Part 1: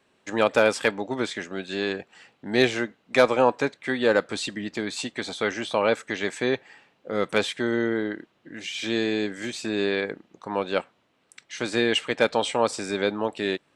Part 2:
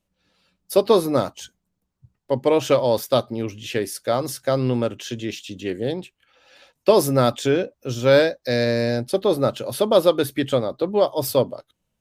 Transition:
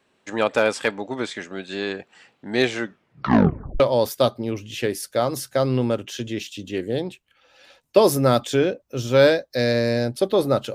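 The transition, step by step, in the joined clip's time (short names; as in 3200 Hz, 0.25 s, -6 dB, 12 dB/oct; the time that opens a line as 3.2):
part 1
2.8 tape stop 1.00 s
3.8 switch to part 2 from 2.72 s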